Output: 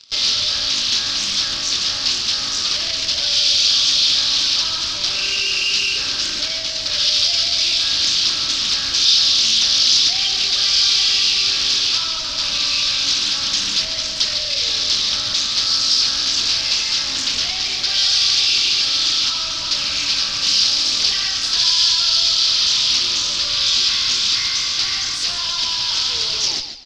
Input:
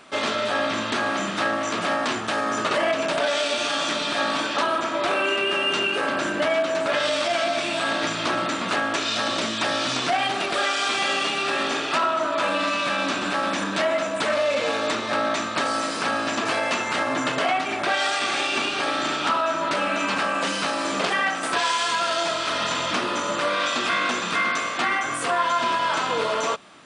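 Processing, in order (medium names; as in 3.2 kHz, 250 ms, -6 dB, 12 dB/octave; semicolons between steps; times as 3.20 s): tape stop on the ending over 0.45 s; tone controls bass -14 dB, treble +2 dB; in parallel at -7 dB: fuzz box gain 44 dB, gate -41 dBFS; on the sum: FFT filter 100 Hz 0 dB, 640 Hz -23 dB, 2 kHz -13 dB, 5 kHz +14 dB, 9.5 kHz -21 dB; on a send: frequency-shifting echo 143 ms, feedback 30%, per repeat -41 Hz, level -9 dB; on the sum: loudspeaker Doppler distortion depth 0.33 ms; trim -1 dB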